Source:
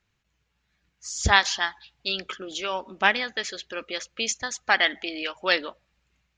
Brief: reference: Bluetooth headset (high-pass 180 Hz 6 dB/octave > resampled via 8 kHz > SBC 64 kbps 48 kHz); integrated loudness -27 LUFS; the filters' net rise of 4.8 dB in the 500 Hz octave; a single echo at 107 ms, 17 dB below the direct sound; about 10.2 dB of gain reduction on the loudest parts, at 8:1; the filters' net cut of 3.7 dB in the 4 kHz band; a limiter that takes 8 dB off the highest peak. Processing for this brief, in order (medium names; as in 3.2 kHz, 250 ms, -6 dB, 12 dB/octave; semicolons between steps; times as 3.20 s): peaking EQ 500 Hz +6.5 dB; peaking EQ 4 kHz -5 dB; compression 8:1, threshold -24 dBFS; peak limiter -19.5 dBFS; high-pass 180 Hz 6 dB/octave; delay 107 ms -17 dB; resampled via 8 kHz; trim +7 dB; SBC 64 kbps 48 kHz